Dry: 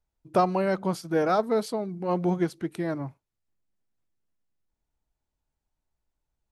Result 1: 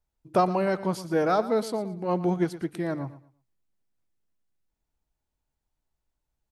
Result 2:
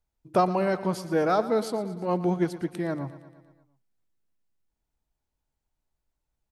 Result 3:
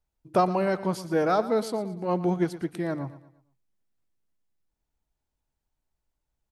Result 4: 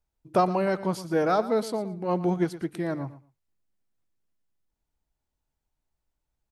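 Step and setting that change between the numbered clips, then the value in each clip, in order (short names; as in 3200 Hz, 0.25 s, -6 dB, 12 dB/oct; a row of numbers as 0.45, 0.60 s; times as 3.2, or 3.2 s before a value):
feedback echo, feedback: 25, 60, 39, 17%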